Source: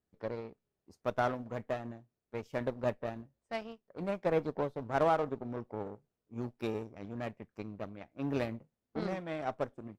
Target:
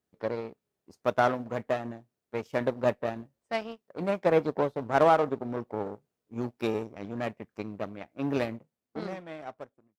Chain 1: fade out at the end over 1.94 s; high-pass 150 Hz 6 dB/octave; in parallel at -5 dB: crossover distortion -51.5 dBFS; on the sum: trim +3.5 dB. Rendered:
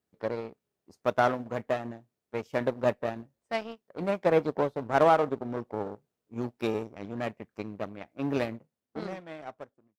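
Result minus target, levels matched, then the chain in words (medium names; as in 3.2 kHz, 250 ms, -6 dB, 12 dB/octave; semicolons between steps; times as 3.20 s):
crossover distortion: distortion +9 dB
fade out at the end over 1.94 s; high-pass 150 Hz 6 dB/octave; in parallel at -5 dB: crossover distortion -62 dBFS; on the sum: trim +3.5 dB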